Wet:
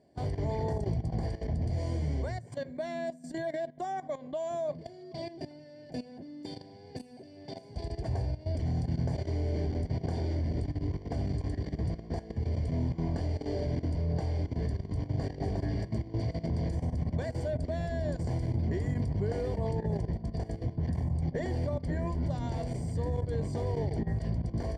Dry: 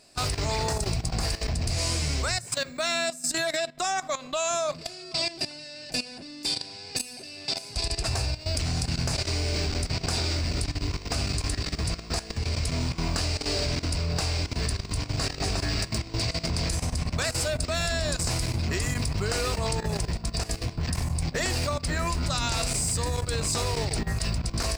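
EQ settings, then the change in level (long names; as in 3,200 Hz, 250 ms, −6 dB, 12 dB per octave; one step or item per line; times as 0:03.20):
moving average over 34 samples
high-pass filter 73 Hz
0.0 dB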